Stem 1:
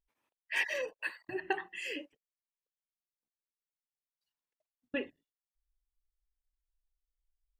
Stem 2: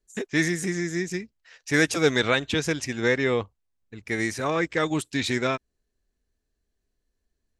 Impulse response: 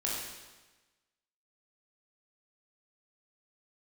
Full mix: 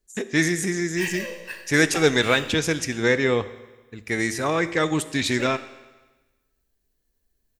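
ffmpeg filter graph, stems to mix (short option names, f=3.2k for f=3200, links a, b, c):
-filter_complex "[0:a]aeval=exprs='if(lt(val(0),0),0.708*val(0),val(0))':c=same,aemphasis=mode=production:type=50fm,adelay=450,volume=-3dB,asplit=2[a][b];[b]volume=-4.5dB[c];[1:a]highshelf=f=9.7k:g=7.5,volume=1dB,asplit=2[d][e];[e]volume=-16dB[f];[2:a]atrim=start_sample=2205[g];[c][f]amix=inputs=2:normalize=0[h];[h][g]afir=irnorm=-1:irlink=0[i];[a][d][i]amix=inputs=3:normalize=0"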